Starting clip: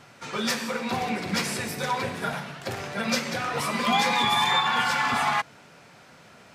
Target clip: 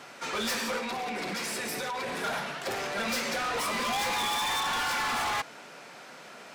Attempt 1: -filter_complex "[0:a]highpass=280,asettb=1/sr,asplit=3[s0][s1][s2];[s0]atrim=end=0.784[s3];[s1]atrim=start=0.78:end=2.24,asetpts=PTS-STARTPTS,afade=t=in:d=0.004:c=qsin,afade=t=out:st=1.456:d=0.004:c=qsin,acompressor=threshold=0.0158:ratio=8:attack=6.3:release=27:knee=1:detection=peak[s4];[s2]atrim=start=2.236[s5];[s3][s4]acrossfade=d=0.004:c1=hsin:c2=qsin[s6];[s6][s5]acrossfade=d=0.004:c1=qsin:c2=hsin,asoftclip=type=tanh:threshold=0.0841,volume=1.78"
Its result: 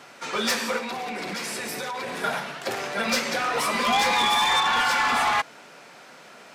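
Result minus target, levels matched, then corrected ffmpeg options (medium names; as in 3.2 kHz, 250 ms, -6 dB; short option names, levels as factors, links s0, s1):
saturation: distortion -8 dB
-filter_complex "[0:a]highpass=280,asettb=1/sr,asplit=3[s0][s1][s2];[s0]atrim=end=0.784[s3];[s1]atrim=start=0.78:end=2.24,asetpts=PTS-STARTPTS,afade=t=in:d=0.004:c=qsin,afade=t=out:st=1.456:d=0.004:c=qsin,acompressor=threshold=0.0158:ratio=8:attack=6.3:release=27:knee=1:detection=peak[s4];[s2]atrim=start=2.236[s5];[s3][s4]acrossfade=d=0.004:c1=hsin:c2=qsin[s6];[s6][s5]acrossfade=d=0.004:c1=qsin:c2=hsin,asoftclip=type=tanh:threshold=0.0224,volume=1.78"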